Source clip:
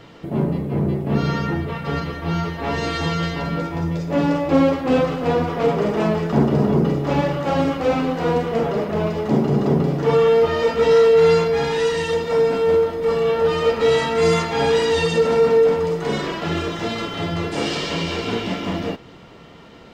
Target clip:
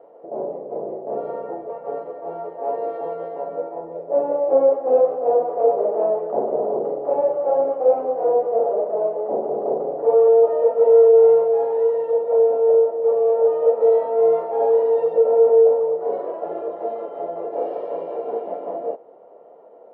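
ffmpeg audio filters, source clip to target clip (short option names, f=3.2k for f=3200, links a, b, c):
-af "asuperpass=centerf=590:order=4:qfactor=2,volume=5dB"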